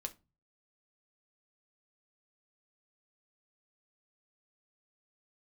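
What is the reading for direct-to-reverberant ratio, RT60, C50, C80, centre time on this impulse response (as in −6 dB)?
5.0 dB, 0.25 s, 19.0 dB, 27.0 dB, 6 ms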